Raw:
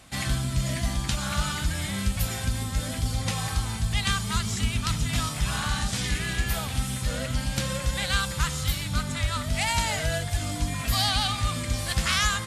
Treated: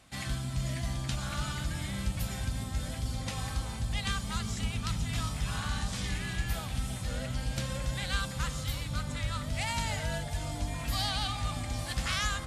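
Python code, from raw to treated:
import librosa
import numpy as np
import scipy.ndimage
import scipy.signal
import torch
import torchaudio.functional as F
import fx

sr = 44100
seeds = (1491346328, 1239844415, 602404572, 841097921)

p1 = fx.high_shelf(x, sr, hz=10000.0, db=-4.5)
p2 = p1 + fx.echo_bbd(p1, sr, ms=335, stages=2048, feedback_pct=79, wet_db=-8, dry=0)
y = F.gain(torch.from_numpy(p2), -7.5).numpy()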